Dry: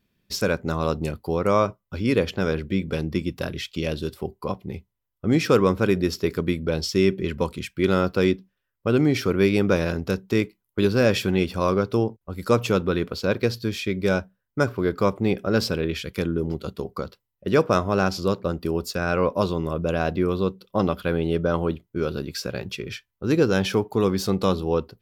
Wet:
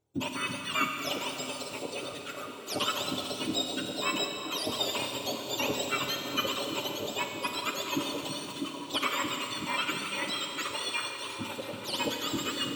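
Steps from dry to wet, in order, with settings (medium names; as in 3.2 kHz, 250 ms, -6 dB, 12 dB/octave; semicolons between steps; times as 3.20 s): spectrum inverted on a logarithmic axis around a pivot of 1.2 kHz; tone controls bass -8 dB, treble -8 dB; time stretch by phase-locked vocoder 0.51×; on a send: repeats whose band climbs or falls 324 ms, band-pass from 160 Hz, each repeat 0.7 oct, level -0.5 dB; on the sum: Schroeder reverb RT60 3.2 s, combs from 31 ms, DRR 3.5 dB; trim -3 dB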